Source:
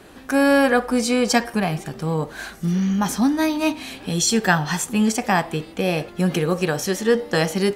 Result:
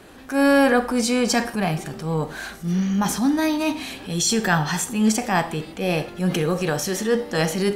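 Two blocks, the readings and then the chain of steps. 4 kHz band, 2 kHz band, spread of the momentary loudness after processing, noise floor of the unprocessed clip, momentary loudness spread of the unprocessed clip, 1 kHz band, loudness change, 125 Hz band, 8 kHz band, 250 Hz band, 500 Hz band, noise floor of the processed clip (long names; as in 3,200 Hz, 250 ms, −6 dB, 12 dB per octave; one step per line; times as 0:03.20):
−0.5 dB, −1.5 dB, 9 LU, −42 dBFS, 8 LU, −1.0 dB, −1.0 dB, −1.0 dB, 0.0 dB, −1.0 dB, −1.5 dB, −40 dBFS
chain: transient designer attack −7 dB, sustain +2 dB
four-comb reverb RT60 0.42 s, combs from 29 ms, DRR 13.5 dB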